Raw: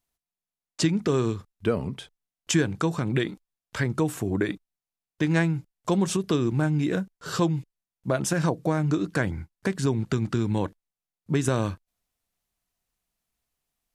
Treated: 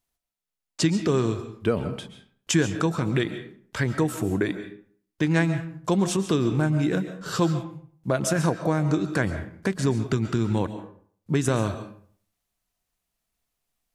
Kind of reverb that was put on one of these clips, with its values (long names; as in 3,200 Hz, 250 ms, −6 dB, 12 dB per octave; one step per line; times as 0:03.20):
comb and all-pass reverb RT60 0.53 s, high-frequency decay 0.65×, pre-delay 95 ms, DRR 9.5 dB
level +1 dB